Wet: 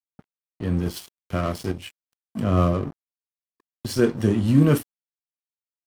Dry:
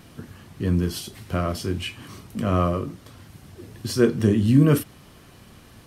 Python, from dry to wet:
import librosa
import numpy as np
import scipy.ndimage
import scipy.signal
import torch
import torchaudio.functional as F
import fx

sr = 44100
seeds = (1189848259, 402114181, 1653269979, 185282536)

y = fx.noise_reduce_blind(x, sr, reduce_db=14)
y = fx.low_shelf(y, sr, hz=400.0, db=5.5, at=(2.12, 2.9), fade=0.02)
y = np.sign(y) * np.maximum(np.abs(y) - 10.0 ** (-35.0 / 20.0), 0.0)
y = fx.tremolo_random(y, sr, seeds[0], hz=3.5, depth_pct=55)
y = y * librosa.db_to_amplitude(2.5)